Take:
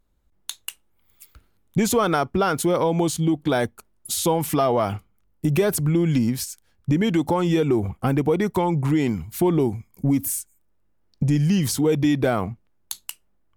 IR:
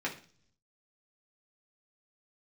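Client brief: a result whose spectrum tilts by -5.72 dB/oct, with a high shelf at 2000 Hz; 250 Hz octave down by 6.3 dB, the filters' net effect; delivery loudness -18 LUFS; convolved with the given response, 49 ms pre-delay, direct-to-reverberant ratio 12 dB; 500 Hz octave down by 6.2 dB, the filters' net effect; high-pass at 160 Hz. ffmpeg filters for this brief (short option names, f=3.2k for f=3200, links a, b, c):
-filter_complex "[0:a]highpass=160,equalizer=f=250:t=o:g=-5.5,equalizer=f=500:t=o:g=-5.5,highshelf=f=2k:g=-7,asplit=2[a][b];[1:a]atrim=start_sample=2205,adelay=49[c];[b][c]afir=irnorm=-1:irlink=0,volume=-17.5dB[d];[a][d]amix=inputs=2:normalize=0,volume=9.5dB"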